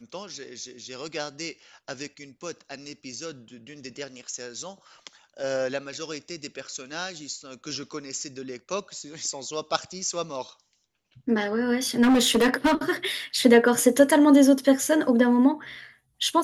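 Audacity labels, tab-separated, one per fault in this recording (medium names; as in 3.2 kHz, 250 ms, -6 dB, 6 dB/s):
12.020000	12.740000	clipped -15.5 dBFS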